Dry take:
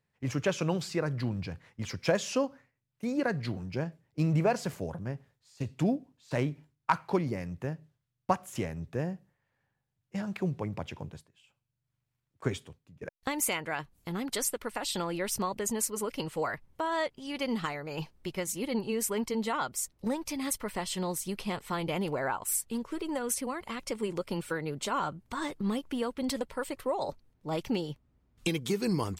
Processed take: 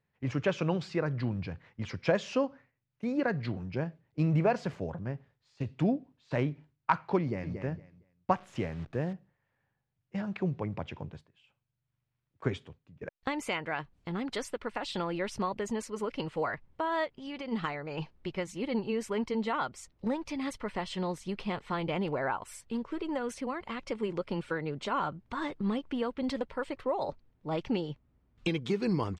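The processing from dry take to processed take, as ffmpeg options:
ffmpeg -i in.wav -filter_complex "[0:a]asplit=2[link_01][link_02];[link_02]afade=type=in:start_time=7.2:duration=0.01,afade=type=out:start_time=7.6:duration=0.01,aecho=0:1:230|460|690:0.446684|0.0893367|0.0178673[link_03];[link_01][link_03]amix=inputs=2:normalize=0,asettb=1/sr,asplit=3[link_04][link_05][link_06];[link_04]atrim=end=8.364[link_07];[link_05]atrim=start=8.36:end=9.13,asetpts=PTS-STARTPTS,afade=type=in:duration=0.004:curve=qsin,afade=type=out:start_time=0.766:duration=0.004:curve=qsin,acrusher=bits=9:dc=4:mix=0:aa=0.000001[link_08];[link_06]atrim=start=9.126[link_09];[link_07][link_08]acrossfade=duration=0.004:curve1=hsin:curve2=qsin[link_10];[link_10][link_09]acrossfade=duration=0.004:curve1=qsin:curve2=hsin,asplit=3[link_11][link_12][link_13];[link_11]afade=type=out:start_time=17.04:duration=0.02[link_14];[link_12]acompressor=threshold=-35dB:ratio=6:attack=3.2:release=140:knee=1:detection=peak,afade=type=in:start_time=17.04:duration=0.02,afade=type=out:start_time=17.51:duration=0.02[link_15];[link_13]afade=type=in:start_time=17.51:duration=0.02[link_16];[link_14][link_15][link_16]amix=inputs=3:normalize=0,lowpass=3500" out.wav

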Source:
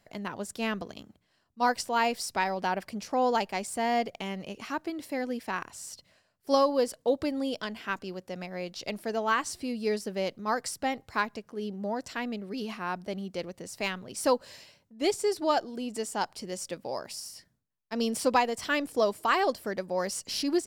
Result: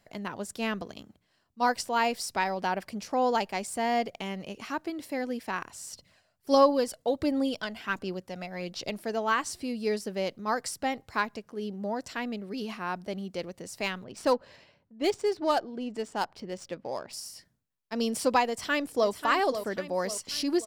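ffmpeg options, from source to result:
ffmpeg -i in.wav -filter_complex "[0:a]asettb=1/sr,asplit=3[link_01][link_02][link_03];[link_01]atrim=end=5.934[link_04];[link_02]atrim=start=5.93:end=8.9,asetpts=PTS-STARTPTS,afade=type=in:duration=0.004:curve=qsin,afade=type=out:start_time=2.966:duration=0.004:curve=qsin,aphaser=in_gain=1:out_gain=1:delay=1.5:decay=0.39:speed=1.4:type=sinusoidal[link_05];[link_03]atrim=start=8.896[link_06];[link_04][link_05]acrossfade=duration=0.004:curve1=hsin:curve2=qsin[link_07];[link_07][link_06]acrossfade=duration=0.004:curve1=qsin:curve2=hsin,asettb=1/sr,asplit=3[link_08][link_09][link_10];[link_08]atrim=end=14.044[link_11];[link_09]atrim=start=14.04:end=17.13,asetpts=PTS-STARTPTS,afade=type=in:duration=0.004:curve=qsin,afade=type=out:start_time=3.086:duration=0.004:curve=qsin,adynamicsmooth=sensitivity=7.5:basefreq=2600[link_12];[link_10]atrim=start=17.126[link_13];[link_11][link_12]acrossfade=duration=0.004:curve1=hsin:curve2=qsin[link_14];[link_14][link_13]acrossfade=duration=0.004:curve1=qsin:curve2=hsin,asplit=2[link_15][link_16];[link_16]afade=type=in:start_time=18.48:duration=0.01,afade=type=out:start_time=19.09:duration=0.01,aecho=0:1:540|1080|1620|2160|2700|3240:0.334965|0.167483|0.0837414|0.0418707|0.0209353|0.0104677[link_17];[link_15][link_17]amix=inputs=2:normalize=0" out.wav

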